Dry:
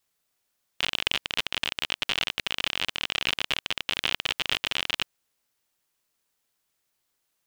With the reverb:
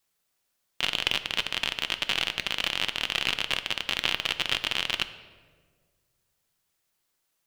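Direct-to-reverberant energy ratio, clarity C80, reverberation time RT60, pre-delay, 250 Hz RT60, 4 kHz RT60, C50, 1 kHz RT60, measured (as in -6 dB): 10.0 dB, 14.0 dB, 1.6 s, 5 ms, 1.8 s, 1.0 s, 13.0 dB, 1.4 s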